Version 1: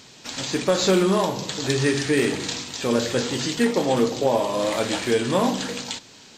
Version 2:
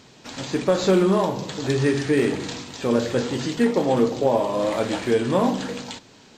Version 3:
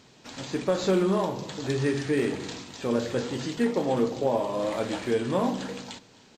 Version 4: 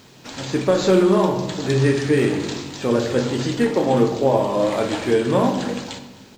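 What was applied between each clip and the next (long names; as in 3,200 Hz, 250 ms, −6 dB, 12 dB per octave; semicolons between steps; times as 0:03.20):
high-shelf EQ 2,100 Hz −9.5 dB; level +1.5 dB
single-tap delay 261 ms −22.5 dB; level −5.5 dB
bit reduction 11 bits; on a send at −8 dB: convolution reverb RT60 0.95 s, pre-delay 19 ms; on the sum: level +7 dB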